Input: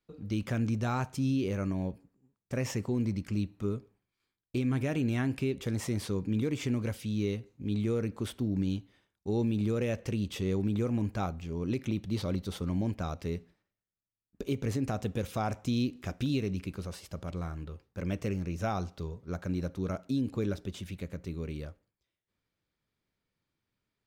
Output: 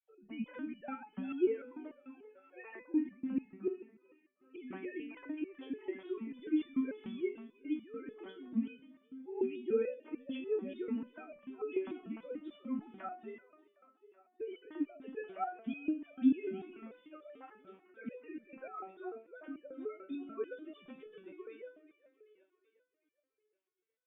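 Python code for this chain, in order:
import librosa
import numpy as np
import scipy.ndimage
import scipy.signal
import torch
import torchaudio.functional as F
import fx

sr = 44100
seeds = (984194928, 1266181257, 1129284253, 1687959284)

y = fx.sine_speech(x, sr)
y = fx.echo_split(y, sr, split_hz=390.0, low_ms=152, high_ms=379, feedback_pct=52, wet_db=-13)
y = fx.resonator_held(y, sr, hz=6.8, low_hz=190.0, high_hz=590.0)
y = y * librosa.db_to_amplitude(7.5)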